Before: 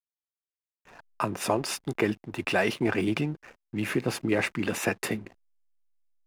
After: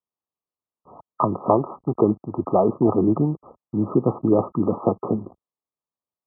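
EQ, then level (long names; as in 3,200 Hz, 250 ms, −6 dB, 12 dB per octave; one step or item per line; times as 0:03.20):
high-pass filter 76 Hz
linear-phase brick-wall low-pass 1,300 Hz
+8.5 dB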